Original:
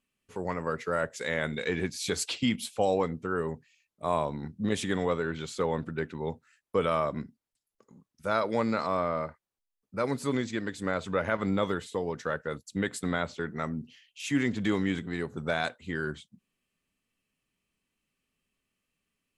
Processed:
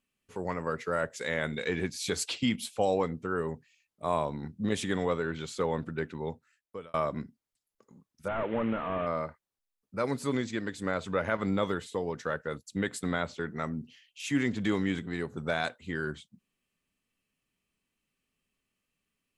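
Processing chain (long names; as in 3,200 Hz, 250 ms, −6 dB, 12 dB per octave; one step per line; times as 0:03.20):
0:06.18–0:06.94: fade out
0:08.28–0:09.07: linear delta modulator 16 kbit/s, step −37.5 dBFS
level −1 dB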